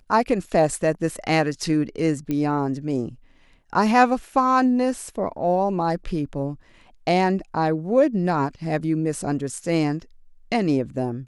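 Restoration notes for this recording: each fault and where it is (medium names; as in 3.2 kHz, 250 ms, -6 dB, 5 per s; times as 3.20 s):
2.31 s: pop -14 dBFS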